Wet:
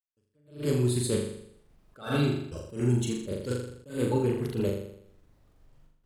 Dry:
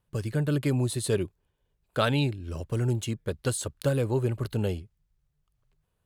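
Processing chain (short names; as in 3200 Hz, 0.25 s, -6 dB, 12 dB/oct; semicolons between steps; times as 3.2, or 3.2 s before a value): bin magnitudes rounded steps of 30 dB; added noise brown -59 dBFS; step gate "..x.xxxxxxxxxx" 179 bpm -60 dB; flutter echo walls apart 7 m, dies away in 0.72 s; attack slew limiter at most 160 dB/s; gain -1.5 dB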